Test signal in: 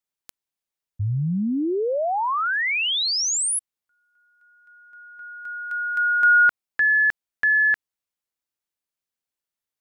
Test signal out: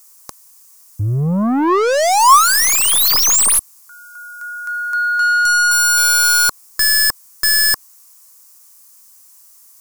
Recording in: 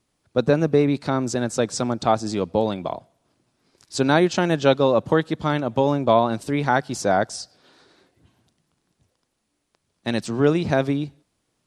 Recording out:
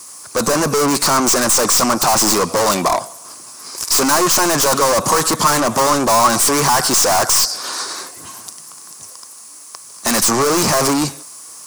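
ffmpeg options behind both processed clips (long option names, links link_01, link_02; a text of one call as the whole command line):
ffmpeg -i in.wav -filter_complex "[0:a]asplit=2[link_01][link_02];[link_02]highpass=frequency=720:poles=1,volume=36dB,asoftclip=type=tanh:threshold=-3dB[link_03];[link_01][link_03]amix=inputs=2:normalize=0,lowpass=frequency=7800:poles=1,volume=-6dB,asplit=2[link_04][link_05];[link_05]alimiter=limit=-11.5dB:level=0:latency=1,volume=1.5dB[link_06];[link_04][link_06]amix=inputs=2:normalize=0,aexciter=amount=11.3:drive=2.5:freq=5100,aeval=exprs='clip(val(0),-1,0.596)':channel_layout=same,equalizer=frequency=1100:width=3.3:gain=12,volume=-10.5dB" out.wav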